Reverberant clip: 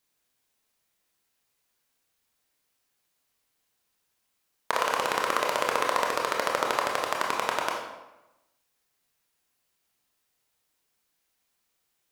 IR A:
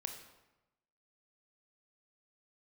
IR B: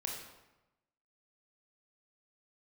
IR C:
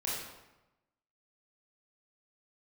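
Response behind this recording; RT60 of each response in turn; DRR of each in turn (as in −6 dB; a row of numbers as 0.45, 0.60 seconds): B; 1.0, 1.0, 1.0 seconds; 4.5, −0.5, −6.5 decibels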